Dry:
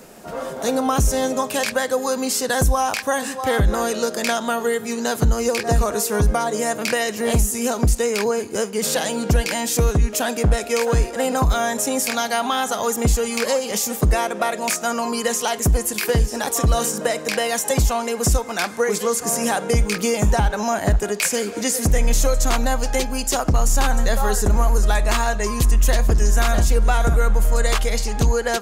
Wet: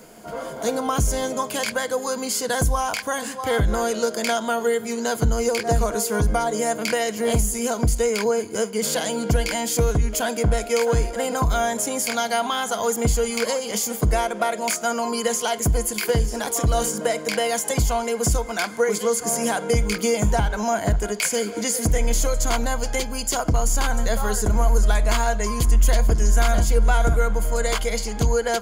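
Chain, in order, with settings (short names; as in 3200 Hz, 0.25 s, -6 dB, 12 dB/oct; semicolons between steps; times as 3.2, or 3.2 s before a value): ripple EQ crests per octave 1.8, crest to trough 7 dB; gain -3 dB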